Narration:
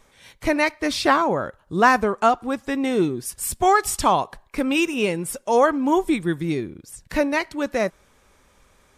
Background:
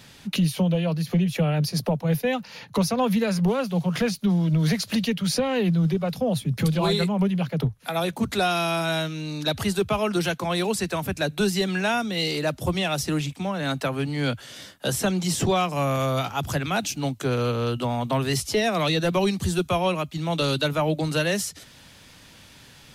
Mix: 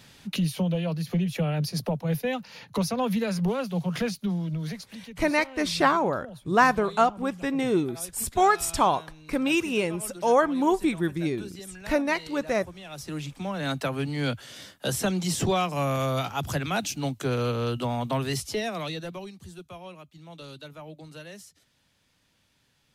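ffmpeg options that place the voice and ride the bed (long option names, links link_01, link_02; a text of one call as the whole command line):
ffmpeg -i stem1.wav -i stem2.wav -filter_complex "[0:a]adelay=4750,volume=-3.5dB[link_01];[1:a]volume=12.5dB,afade=type=out:start_time=4.02:duration=0.95:silence=0.177828,afade=type=in:start_time=12.83:duration=0.81:silence=0.149624,afade=type=out:start_time=18.02:duration=1.27:silence=0.141254[link_02];[link_01][link_02]amix=inputs=2:normalize=0" out.wav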